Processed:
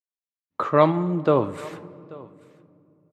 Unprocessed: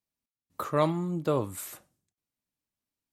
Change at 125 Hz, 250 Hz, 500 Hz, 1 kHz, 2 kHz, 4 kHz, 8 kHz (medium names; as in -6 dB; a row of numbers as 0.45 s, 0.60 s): +5.5 dB, +7.5 dB, +9.0 dB, +9.0 dB, +8.0 dB, +3.5 dB, under -10 dB